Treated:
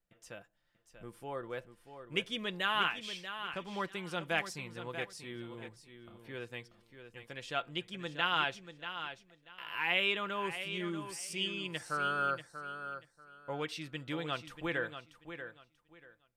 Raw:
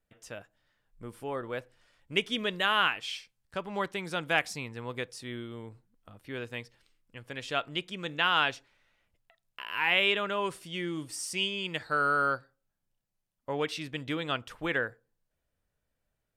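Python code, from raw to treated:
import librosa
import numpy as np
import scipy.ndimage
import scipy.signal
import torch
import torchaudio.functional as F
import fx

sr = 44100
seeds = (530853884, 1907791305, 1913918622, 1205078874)

y = x + 0.35 * np.pad(x, (int(5.8 * sr / 1000.0), 0))[:len(x)]
y = fx.echo_feedback(y, sr, ms=637, feedback_pct=22, wet_db=-10.0)
y = y * 10.0 ** (-6.0 / 20.0)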